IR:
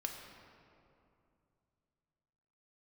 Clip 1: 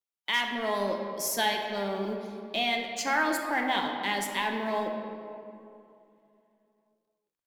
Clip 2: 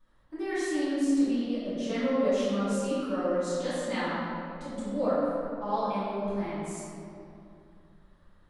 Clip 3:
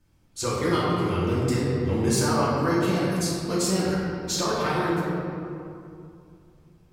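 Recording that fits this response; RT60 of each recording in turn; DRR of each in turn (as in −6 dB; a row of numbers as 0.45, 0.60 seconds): 1; 2.6, 2.6, 2.6 seconds; 2.0, −15.0, −8.0 decibels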